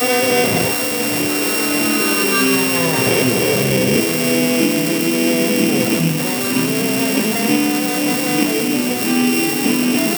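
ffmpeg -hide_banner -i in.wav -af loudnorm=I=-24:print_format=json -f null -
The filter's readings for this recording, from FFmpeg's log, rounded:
"input_i" : "-15.6",
"input_tp" : "-2.6",
"input_lra" : "1.4",
"input_thresh" : "-25.6",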